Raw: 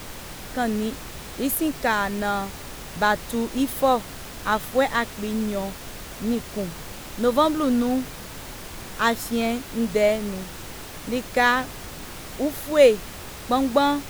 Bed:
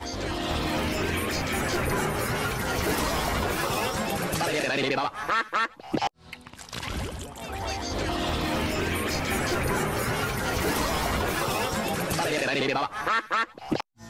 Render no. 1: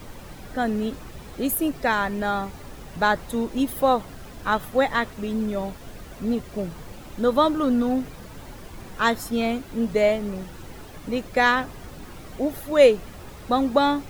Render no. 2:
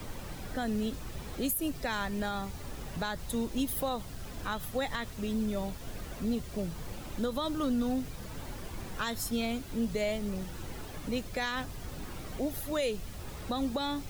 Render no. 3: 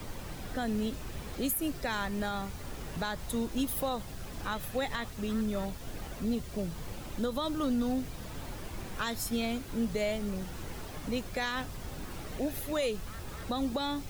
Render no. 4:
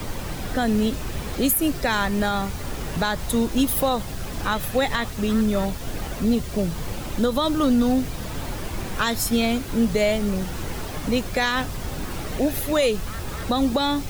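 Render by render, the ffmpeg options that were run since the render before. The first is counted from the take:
ffmpeg -i in.wav -af "afftdn=noise_reduction=10:noise_floor=-38" out.wav
ffmpeg -i in.wav -filter_complex "[0:a]acrossover=split=150|3000[link_01][link_02][link_03];[link_02]acompressor=threshold=-47dB:ratio=1.5[link_04];[link_01][link_04][link_03]amix=inputs=3:normalize=0,alimiter=limit=-22dB:level=0:latency=1:release=99" out.wav
ffmpeg -i in.wav -i bed.wav -filter_complex "[1:a]volume=-26dB[link_01];[0:a][link_01]amix=inputs=2:normalize=0" out.wav
ffmpeg -i in.wav -af "volume=11dB" out.wav

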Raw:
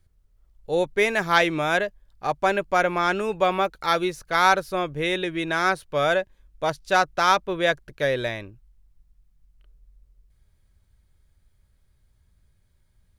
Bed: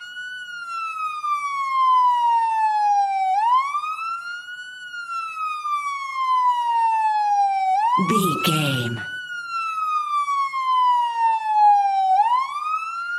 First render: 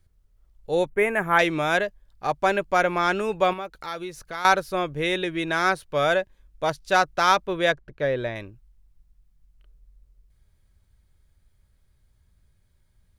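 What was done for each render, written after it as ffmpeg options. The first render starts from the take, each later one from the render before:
ffmpeg -i in.wav -filter_complex "[0:a]asettb=1/sr,asplit=3[link_01][link_02][link_03];[link_01]atrim=end=0.894[link_04];[link_02]atrim=start=0.89:end=1.39,asetpts=PTS-STARTPTS,afade=type=in:duration=0.004:curve=qsin,afade=type=out:start_time=0.496:duration=0.004:curve=qsin,asuperstop=centerf=4700:order=4:qfactor=0.72[link_05];[link_03]atrim=start=1.386[link_06];[link_04][link_05]acrossfade=duration=0.004:curve1=hsin:curve2=qsin[link_07];[link_07][link_06]acrossfade=duration=0.004:curve1=qsin:curve2=hsin,asettb=1/sr,asplit=3[link_08][link_09][link_10];[link_08]atrim=end=3.534[link_11];[link_09]atrim=start=3.53:end=4.45,asetpts=PTS-STARTPTS,afade=type=in:duration=0.004:curve=qsin,afade=type=out:start_time=0.916:duration=0.004:curve=qsin,acompressor=threshold=-37dB:ratio=2:attack=3.2:release=140:knee=1:detection=peak[link_12];[link_10]atrim=start=4.446[link_13];[link_11][link_12]acrossfade=duration=0.004:curve1=hsin:curve2=qsin[link_14];[link_14][link_13]acrossfade=duration=0.004:curve1=qsin:curve2=hsin,asettb=1/sr,asplit=3[link_15][link_16][link_17];[link_15]atrim=end=7.724[link_18];[link_16]atrim=start=7.72:end=8.36,asetpts=PTS-STARTPTS,afade=type=in:duration=0.004:curve=qsin,afade=type=out:start_time=0.636:duration=0.004:curve=qsin,lowpass=frequency=1400:poles=1[link_19];[link_17]atrim=start=8.356[link_20];[link_18][link_19]acrossfade=duration=0.004:curve1=hsin:curve2=qsin[link_21];[link_21][link_20]acrossfade=duration=0.004:curve1=qsin:curve2=hsin" out.wav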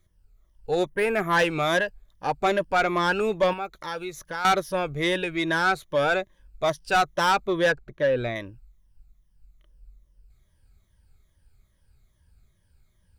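ffmpeg -i in.wav -af "afftfilt=real='re*pow(10,11/40*sin(2*PI*(1.2*log(max(b,1)*sr/1024/100)/log(2)-(-2.4)*(pts-256)/sr)))':imag='im*pow(10,11/40*sin(2*PI*(1.2*log(max(b,1)*sr/1024/100)/log(2)-(-2.4)*(pts-256)/sr)))':win_size=1024:overlap=0.75,asoftclip=type=tanh:threshold=-14.5dB" out.wav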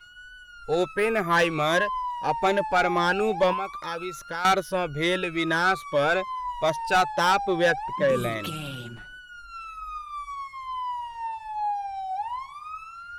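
ffmpeg -i in.wav -i bed.wav -filter_complex "[1:a]volume=-13.5dB[link_01];[0:a][link_01]amix=inputs=2:normalize=0" out.wav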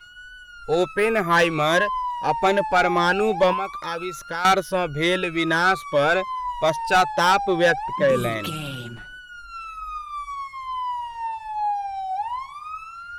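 ffmpeg -i in.wav -af "volume=3.5dB" out.wav

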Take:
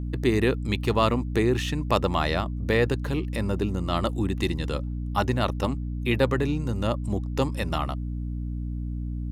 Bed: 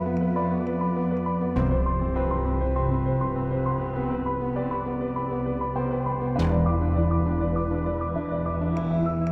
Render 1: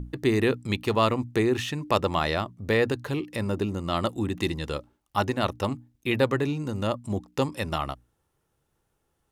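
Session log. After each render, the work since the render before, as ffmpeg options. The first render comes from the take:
ffmpeg -i in.wav -af "bandreject=frequency=60:width_type=h:width=6,bandreject=frequency=120:width_type=h:width=6,bandreject=frequency=180:width_type=h:width=6,bandreject=frequency=240:width_type=h:width=6,bandreject=frequency=300:width_type=h:width=6" out.wav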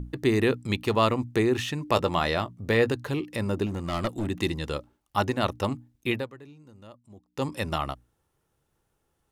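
ffmpeg -i in.wav -filter_complex "[0:a]asettb=1/sr,asplit=3[link_01][link_02][link_03];[link_01]atrim=end=1.874[link_04];[link_02]atrim=start=1.87:end=2.92,asetpts=PTS-STARTPTS,afade=type=in:duration=0.004:curve=qsin,afade=type=out:start_time=1.046:duration=0.004:curve=qsin,asplit=2[link_05][link_06];[link_06]adelay=17,volume=-12dB[link_07];[link_05][link_07]amix=inputs=2:normalize=0,atrim=end_sample=46305[link_08];[link_03]atrim=start=2.916[link_09];[link_04][link_08]acrossfade=duration=0.004:curve1=hsin:curve2=qsin[link_10];[link_10][link_09]acrossfade=duration=0.004:curve1=qsin:curve2=hsin,asettb=1/sr,asplit=3[link_11][link_12][link_13];[link_11]atrim=end=3.664[link_14];[link_12]atrim=start=3.66:end=4.27,asetpts=PTS-STARTPTS,afade=type=in:duration=0.004:curve=qsin,afade=type=out:start_time=0.606:duration=0.004:curve=qsin,aeval=exprs='clip(val(0),-1,0.0422)':channel_layout=same[link_15];[link_13]atrim=start=4.266[link_16];[link_14][link_15]acrossfade=duration=0.004:curve1=hsin:curve2=qsin[link_17];[link_17][link_16]acrossfade=duration=0.004:curve1=qsin:curve2=hsin,asplit=3[link_18][link_19][link_20];[link_18]atrim=end=6.34,asetpts=PTS-STARTPTS,afade=type=out:start_time=6.1:duration=0.24:curve=qua:silence=0.0891251[link_21];[link_19]atrim=start=6.34:end=7.23,asetpts=PTS-STARTPTS,volume=-21dB[link_22];[link_20]atrim=start=7.23,asetpts=PTS-STARTPTS,afade=type=in:duration=0.24:curve=qua:silence=0.0891251[link_23];[link_21][link_22][link_23]concat=n=3:v=0:a=1" out.wav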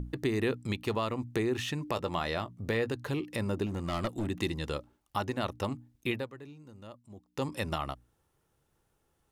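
ffmpeg -i in.wav -af "alimiter=limit=-14dB:level=0:latency=1:release=319,acompressor=threshold=-36dB:ratio=1.5" out.wav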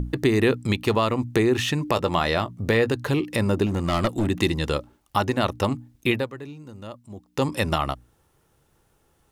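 ffmpeg -i in.wav -af "volume=10dB" out.wav

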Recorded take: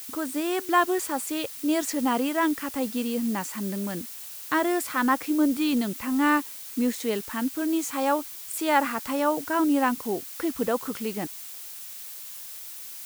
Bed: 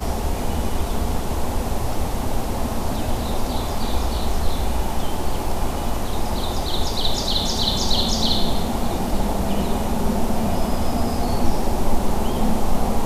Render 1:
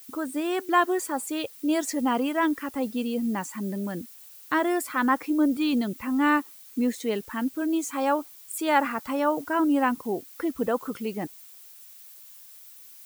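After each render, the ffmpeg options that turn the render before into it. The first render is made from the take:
ffmpeg -i in.wav -af "afftdn=noise_reduction=11:noise_floor=-40" out.wav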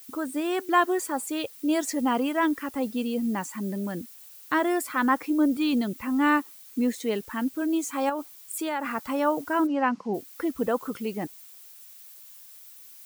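ffmpeg -i in.wav -filter_complex "[0:a]asettb=1/sr,asplit=3[link_01][link_02][link_03];[link_01]atrim=end=8.094[link_04];[link_02]atrim=start=8.09:end=8.92,asetpts=PTS-STARTPTS,afade=type=in:duration=0.004:curve=qsin,afade=type=out:start_time=0.826:duration=0.004:curve=qsin,acompressor=threshold=-25dB:ratio=6:attack=3.2:release=140:knee=1:detection=peak[link_05];[link_03]atrim=start=8.916[link_06];[link_04][link_05]acrossfade=duration=0.004:curve1=hsin:curve2=qsin[link_07];[link_07][link_06]acrossfade=duration=0.004:curve1=qsin:curve2=hsin,asplit=3[link_08][link_09][link_10];[link_08]afade=type=out:start_time=9.66:duration=0.02[link_11];[link_09]highpass=180,equalizer=frequency=190:width_type=q:width=4:gain=9,equalizer=frequency=310:width_type=q:width=4:gain=-8,equalizer=frequency=3600:width_type=q:width=4:gain=-7,lowpass=frequency=5500:width=0.5412,lowpass=frequency=5500:width=1.3066,afade=type=in:start_time=9.66:duration=0.02,afade=type=out:start_time=10.13:duration=0.02[link_12];[link_10]afade=type=in:start_time=10.13:duration=0.02[link_13];[link_11][link_12][link_13]amix=inputs=3:normalize=0" out.wav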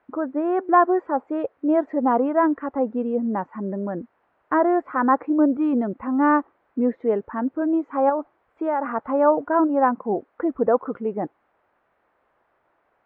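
ffmpeg -i in.wav -af "lowpass=frequency=1600:width=0.5412,lowpass=frequency=1600:width=1.3066,equalizer=frequency=610:width=0.76:gain=9" out.wav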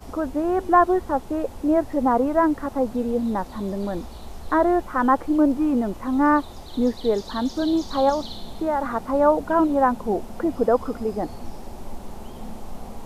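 ffmpeg -i in.wav -i bed.wav -filter_complex "[1:a]volume=-16dB[link_01];[0:a][link_01]amix=inputs=2:normalize=0" out.wav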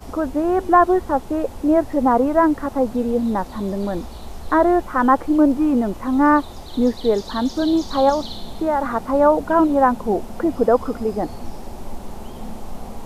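ffmpeg -i in.wav -af "volume=3.5dB,alimiter=limit=-3dB:level=0:latency=1" out.wav

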